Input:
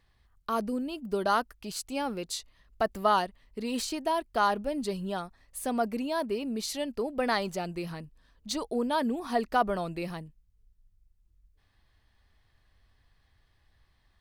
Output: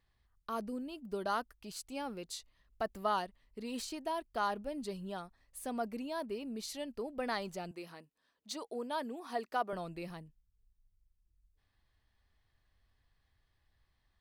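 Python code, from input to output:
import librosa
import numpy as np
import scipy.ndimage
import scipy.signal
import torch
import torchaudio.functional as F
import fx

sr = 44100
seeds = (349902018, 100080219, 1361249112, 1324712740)

y = fx.highpass(x, sr, hz=300.0, slope=12, at=(7.71, 9.73))
y = F.gain(torch.from_numpy(y), -8.5).numpy()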